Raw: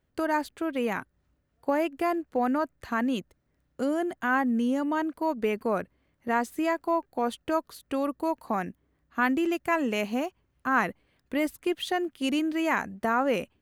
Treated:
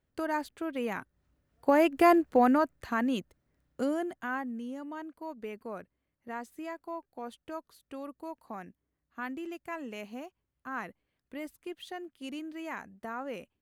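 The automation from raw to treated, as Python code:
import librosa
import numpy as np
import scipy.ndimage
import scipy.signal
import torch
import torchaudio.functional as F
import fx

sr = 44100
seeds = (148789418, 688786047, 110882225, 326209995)

y = fx.gain(x, sr, db=fx.line((0.98, -5.0), (2.13, 6.5), (2.93, -2.0), (3.83, -2.0), (4.6, -13.0)))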